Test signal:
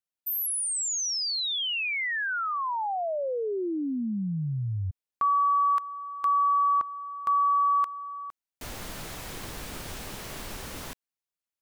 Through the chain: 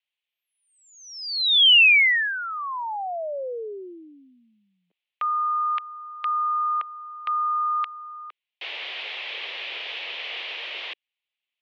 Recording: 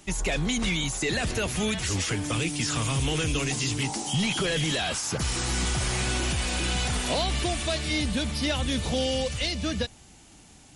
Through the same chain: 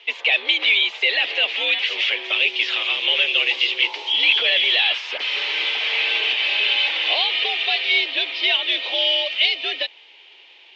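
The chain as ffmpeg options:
-af "highpass=f=360:t=q:w=0.5412,highpass=f=360:t=q:w=1.307,lowpass=f=3.1k:t=q:w=0.5176,lowpass=f=3.1k:t=q:w=0.7071,lowpass=f=3.1k:t=q:w=1.932,afreqshift=81,aexciter=amount=9.5:drive=3:freq=2.1k"

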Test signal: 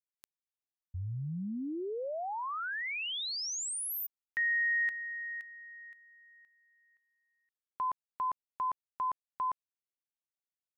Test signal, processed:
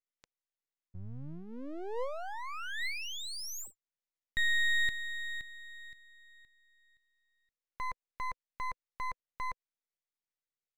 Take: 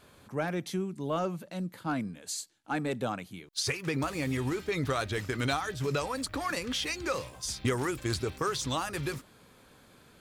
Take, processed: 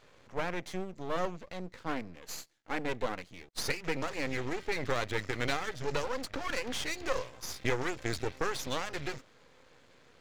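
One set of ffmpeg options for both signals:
-af "highpass=f=74:p=1,aresample=16000,aresample=44100,equalizer=f=200:t=o:w=0.33:g=-6,equalizer=f=500:t=o:w=0.33:g=8,equalizer=f=2k:t=o:w=0.33:g=7,aeval=exprs='max(val(0),0)':c=same"

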